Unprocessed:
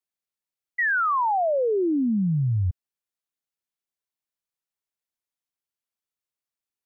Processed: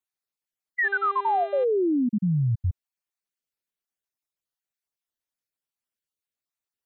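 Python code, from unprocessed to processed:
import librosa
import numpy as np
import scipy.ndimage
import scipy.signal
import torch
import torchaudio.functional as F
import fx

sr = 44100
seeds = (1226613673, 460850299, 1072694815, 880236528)

y = fx.spec_dropout(x, sr, seeds[0], share_pct=26)
y = fx.dmg_buzz(y, sr, base_hz=400.0, harmonics=10, level_db=-37.0, tilt_db=-8, odd_only=False, at=(0.83, 1.63), fade=0.02)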